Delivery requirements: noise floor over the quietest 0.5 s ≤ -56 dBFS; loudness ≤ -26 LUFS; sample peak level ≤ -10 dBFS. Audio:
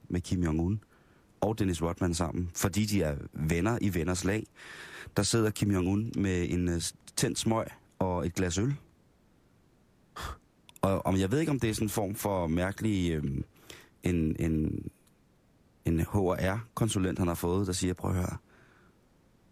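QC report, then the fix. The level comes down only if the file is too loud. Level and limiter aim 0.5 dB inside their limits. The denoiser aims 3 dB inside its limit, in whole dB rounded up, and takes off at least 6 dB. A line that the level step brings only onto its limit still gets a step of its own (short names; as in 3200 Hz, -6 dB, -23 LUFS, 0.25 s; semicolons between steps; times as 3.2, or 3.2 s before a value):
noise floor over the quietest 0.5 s -65 dBFS: OK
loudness -30.5 LUFS: OK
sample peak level -13.5 dBFS: OK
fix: none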